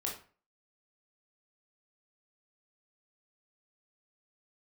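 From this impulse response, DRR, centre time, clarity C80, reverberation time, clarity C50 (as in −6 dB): −2.0 dB, 28 ms, 11.5 dB, 0.40 s, 6.5 dB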